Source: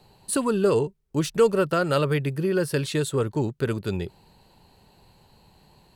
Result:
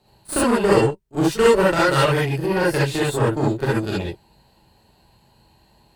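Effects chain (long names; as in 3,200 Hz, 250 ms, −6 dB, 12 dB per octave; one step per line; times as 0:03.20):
harmonic generator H 6 −21 dB, 7 −22 dB, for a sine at −8.5 dBFS
echo ahead of the sound 37 ms −17 dB
reverb whose tail is shaped and stops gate 90 ms rising, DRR −6.5 dB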